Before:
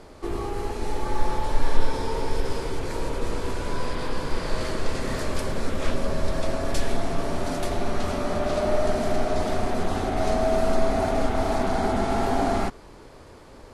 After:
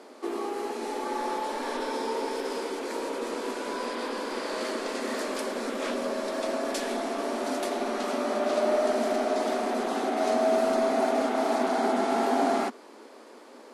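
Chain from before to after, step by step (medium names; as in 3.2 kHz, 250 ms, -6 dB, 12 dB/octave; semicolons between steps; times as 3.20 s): elliptic high-pass 230 Hz, stop band 40 dB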